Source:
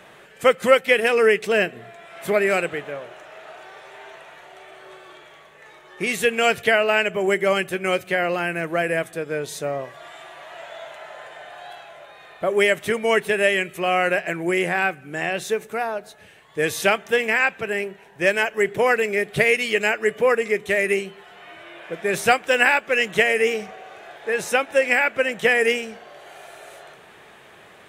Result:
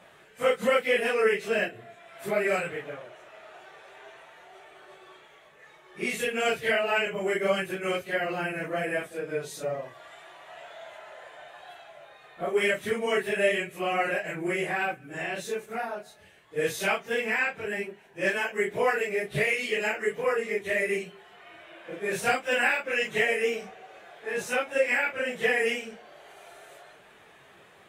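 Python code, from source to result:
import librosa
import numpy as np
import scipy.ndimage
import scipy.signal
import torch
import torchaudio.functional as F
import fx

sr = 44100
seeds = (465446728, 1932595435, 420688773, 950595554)

y = fx.phase_scramble(x, sr, seeds[0], window_ms=100)
y = y * librosa.db_to_amplitude(-7.0)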